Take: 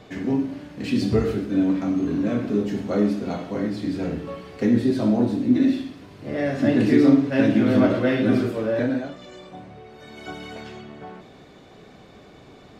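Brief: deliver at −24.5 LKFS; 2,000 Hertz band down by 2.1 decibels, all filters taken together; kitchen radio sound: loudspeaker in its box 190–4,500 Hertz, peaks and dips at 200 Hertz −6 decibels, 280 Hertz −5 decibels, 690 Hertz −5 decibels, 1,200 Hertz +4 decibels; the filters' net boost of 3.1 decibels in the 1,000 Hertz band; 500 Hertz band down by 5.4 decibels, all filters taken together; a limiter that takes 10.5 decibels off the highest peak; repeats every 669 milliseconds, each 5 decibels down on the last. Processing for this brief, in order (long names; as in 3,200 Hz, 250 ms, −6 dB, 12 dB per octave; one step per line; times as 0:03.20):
parametric band 500 Hz −6.5 dB
parametric band 1,000 Hz +8 dB
parametric band 2,000 Hz −6 dB
brickwall limiter −17.5 dBFS
loudspeaker in its box 190–4,500 Hz, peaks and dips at 200 Hz −6 dB, 280 Hz −5 dB, 690 Hz −5 dB, 1,200 Hz +4 dB
repeating echo 669 ms, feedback 56%, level −5 dB
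level +6.5 dB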